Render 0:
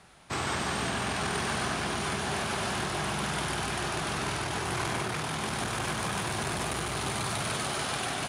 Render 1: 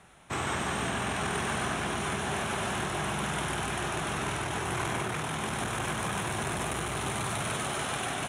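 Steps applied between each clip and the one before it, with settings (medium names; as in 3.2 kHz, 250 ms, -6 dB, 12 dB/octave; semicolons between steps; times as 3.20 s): peaking EQ 4.7 kHz -14 dB 0.32 oct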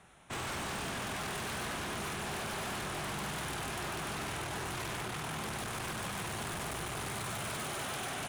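wavefolder -29.5 dBFS; trim -3.5 dB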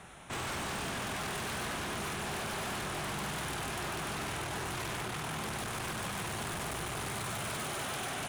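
peak limiter -40.5 dBFS, peak gain reduction 7.5 dB; trim +8.5 dB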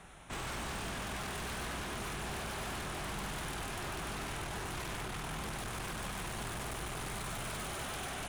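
octave divider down 2 oct, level 0 dB; trim -3.5 dB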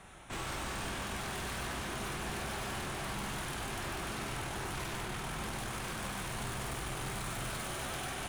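reverberation, pre-delay 3 ms, DRR 5 dB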